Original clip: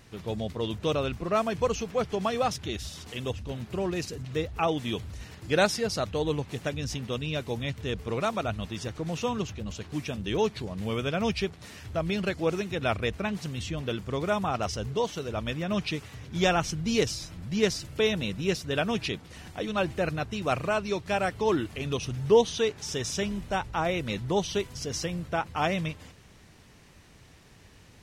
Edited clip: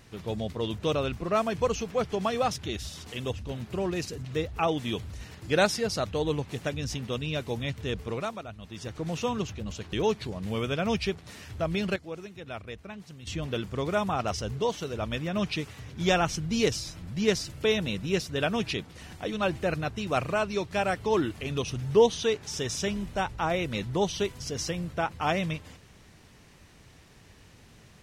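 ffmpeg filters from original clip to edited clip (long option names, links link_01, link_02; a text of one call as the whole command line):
ffmpeg -i in.wav -filter_complex "[0:a]asplit=6[link_01][link_02][link_03][link_04][link_05][link_06];[link_01]atrim=end=8.44,asetpts=PTS-STARTPTS,afade=type=out:start_time=8:duration=0.44:silence=0.281838[link_07];[link_02]atrim=start=8.44:end=8.6,asetpts=PTS-STARTPTS,volume=-11dB[link_08];[link_03]atrim=start=8.6:end=9.932,asetpts=PTS-STARTPTS,afade=type=in:duration=0.44:silence=0.281838[link_09];[link_04]atrim=start=10.278:end=12.312[link_10];[link_05]atrim=start=12.308:end=13.622,asetpts=PTS-STARTPTS,volume=-11.5dB[link_11];[link_06]atrim=start=13.618[link_12];[link_07][link_08][link_09]concat=n=3:v=0:a=1[link_13];[link_13][link_10]acrossfade=duration=0.004:curve1=hsin:curve2=hsin[link_14];[link_14][link_11]acrossfade=duration=0.004:curve1=hsin:curve2=hsin[link_15];[link_15][link_12]acrossfade=duration=0.004:curve1=hsin:curve2=hsin" out.wav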